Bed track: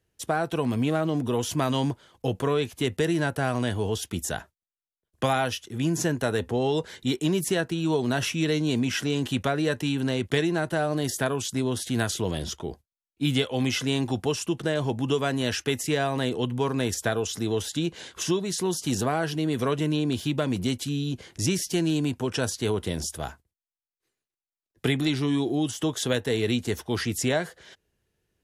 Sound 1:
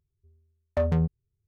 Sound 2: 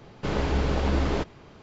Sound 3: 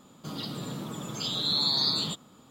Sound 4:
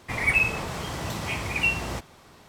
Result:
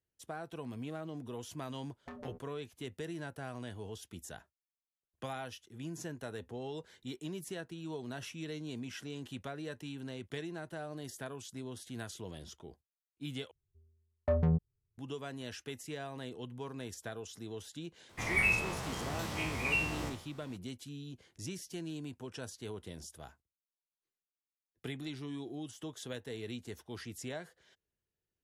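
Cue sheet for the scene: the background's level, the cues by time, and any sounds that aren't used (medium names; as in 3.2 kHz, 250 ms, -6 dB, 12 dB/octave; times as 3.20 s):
bed track -17 dB
1.31 s: add 1 -12.5 dB + spectral gate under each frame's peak -10 dB weak
13.51 s: replace with 1 -4.5 dB + low-pass 1.5 kHz 6 dB/octave
18.09 s: add 4 -9 dB + spectral sustain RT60 0.52 s
not used: 2, 3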